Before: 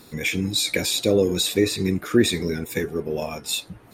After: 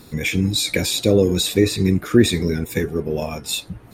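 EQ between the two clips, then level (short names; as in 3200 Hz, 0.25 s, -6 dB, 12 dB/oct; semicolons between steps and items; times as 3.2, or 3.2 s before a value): low shelf 170 Hz +9.5 dB; +1.5 dB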